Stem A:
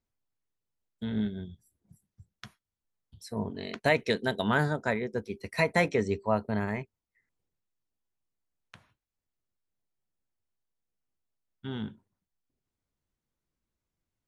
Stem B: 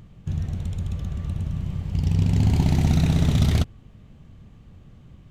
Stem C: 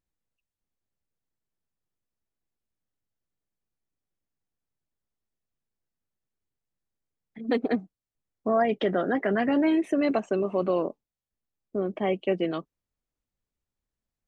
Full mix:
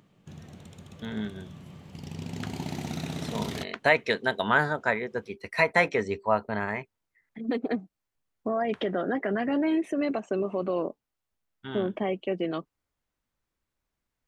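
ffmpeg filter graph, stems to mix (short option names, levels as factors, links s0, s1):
-filter_complex "[0:a]equalizer=f=1400:w=0.32:g=12,volume=0.501[s0];[1:a]highpass=250,volume=0.501[s1];[2:a]alimiter=limit=0.0944:level=0:latency=1:release=231,volume=1.19[s2];[s0][s1][s2]amix=inputs=3:normalize=0"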